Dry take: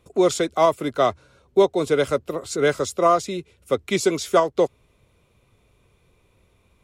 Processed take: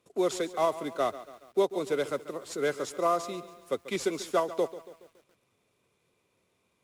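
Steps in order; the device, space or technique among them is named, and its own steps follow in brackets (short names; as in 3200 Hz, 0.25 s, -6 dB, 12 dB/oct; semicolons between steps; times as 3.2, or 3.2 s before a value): early wireless headset (HPF 180 Hz 12 dB/oct; CVSD 64 kbps); lo-fi delay 0.14 s, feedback 55%, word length 7-bit, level -15 dB; gain -9 dB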